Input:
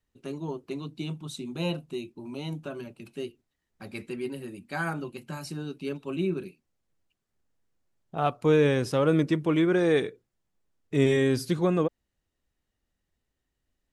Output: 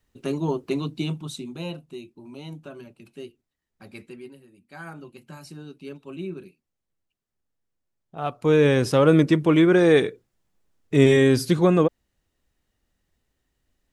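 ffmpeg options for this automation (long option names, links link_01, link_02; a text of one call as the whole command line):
ffmpeg -i in.wav -af "volume=31dB,afade=type=out:start_time=0.77:duration=0.88:silence=0.237137,afade=type=out:start_time=3.96:duration=0.51:silence=0.251189,afade=type=in:start_time=4.47:duration=0.74:silence=0.298538,afade=type=in:start_time=8.16:duration=0.7:silence=0.266073" out.wav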